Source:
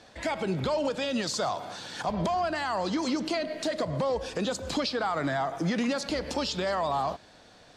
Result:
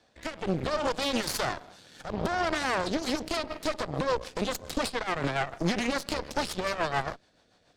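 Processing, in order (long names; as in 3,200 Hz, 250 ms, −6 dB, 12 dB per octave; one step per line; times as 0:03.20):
rotating-speaker cabinet horn 0.65 Hz, later 7 Hz, at 0:02.66
harmonic generator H 4 −8 dB, 7 −21 dB, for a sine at −19 dBFS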